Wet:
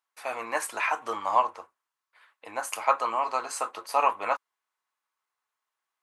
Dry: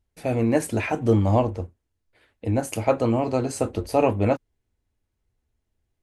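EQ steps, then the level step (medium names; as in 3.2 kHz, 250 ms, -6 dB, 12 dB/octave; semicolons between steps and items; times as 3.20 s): resonant high-pass 1.1 kHz, resonance Q 4.2; -1.0 dB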